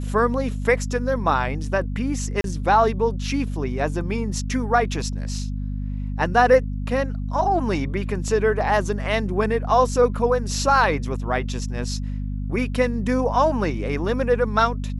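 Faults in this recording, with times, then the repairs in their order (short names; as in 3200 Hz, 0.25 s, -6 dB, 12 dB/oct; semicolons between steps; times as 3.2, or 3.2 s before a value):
hum 50 Hz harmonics 5 -27 dBFS
2.41–2.44 gap 32 ms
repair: de-hum 50 Hz, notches 5; interpolate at 2.41, 32 ms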